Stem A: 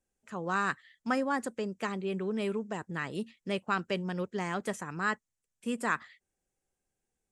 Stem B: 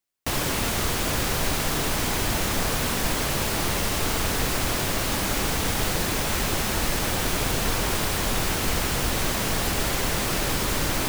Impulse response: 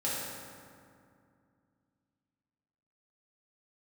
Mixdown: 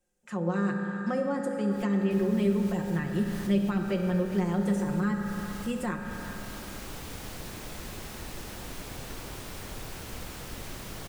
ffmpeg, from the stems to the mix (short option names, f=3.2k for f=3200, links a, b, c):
-filter_complex "[0:a]aecho=1:1:5.6:0.66,volume=0.5dB,asplit=4[a][b][c][d];[b]volume=-6.5dB[e];[c]volume=-14.5dB[f];[1:a]adelay=1450,volume=-15dB,asplit=2[g][h];[h]volume=-5dB[i];[d]apad=whole_len=552822[j];[g][j]sidechaincompress=threshold=-47dB:ratio=8:attack=16:release=115[k];[2:a]atrim=start_sample=2205[l];[e][l]afir=irnorm=-1:irlink=0[m];[f][i]amix=inputs=2:normalize=0,aecho=0:1:394:1[n];[a][k][m][n]amix=inputs=4:normalize=0,acrossover=split=480[o][p];[p]acompressor=threshold=-42dB:ratio=2.5[q];[o][q]amix=inputs=2:normalize=0"